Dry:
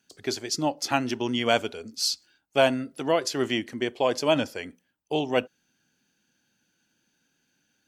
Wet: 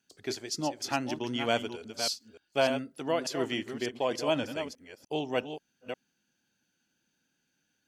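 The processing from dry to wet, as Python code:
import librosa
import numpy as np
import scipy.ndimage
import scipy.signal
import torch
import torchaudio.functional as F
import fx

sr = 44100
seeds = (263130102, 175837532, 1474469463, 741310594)

y = fx.reverse_delay(x, sr, ms=297, wet_db=-8)
y = F.gain(torch.from_numpy(y), -6.0).numpy()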